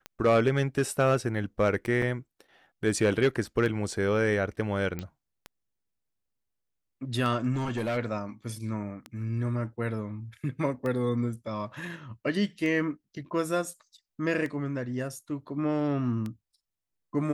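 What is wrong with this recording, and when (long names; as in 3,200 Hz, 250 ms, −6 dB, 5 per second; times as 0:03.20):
scratch tick 33 1/3 rpm −22 dBFS
0:02.02: drop-out 3 ms
0:04.99: click −20 dBFS
0:07.53–0:07.98: clipping −25.5 dBFS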